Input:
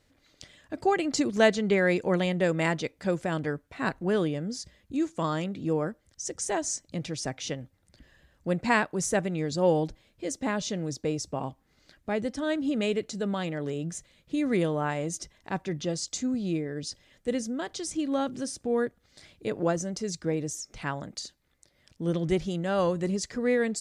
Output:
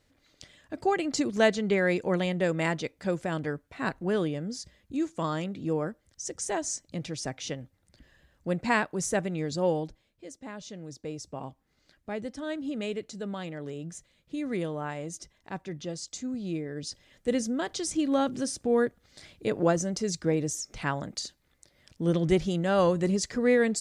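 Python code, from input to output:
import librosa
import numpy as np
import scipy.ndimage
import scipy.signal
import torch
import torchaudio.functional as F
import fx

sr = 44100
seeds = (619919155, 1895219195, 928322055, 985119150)

y = fx.gain(x, sr, db=fx.line((9.56, -1.5), (10.38, -13.0), (11.43, -5.5), (16.22, -5.5), (17.41, 2.5)))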